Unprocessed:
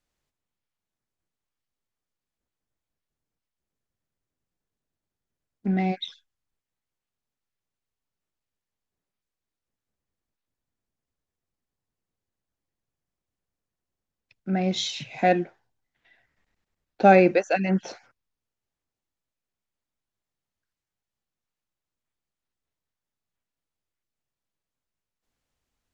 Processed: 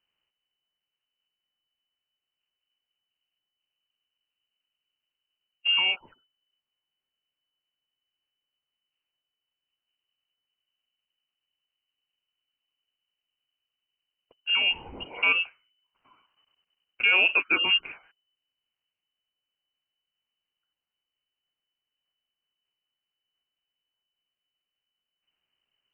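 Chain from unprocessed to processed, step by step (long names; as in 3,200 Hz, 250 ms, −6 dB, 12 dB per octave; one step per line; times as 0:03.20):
voice inversion scrambler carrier 3,000 Hz
brickwall limiter −12 dBFS, peak gain reduction 8 dB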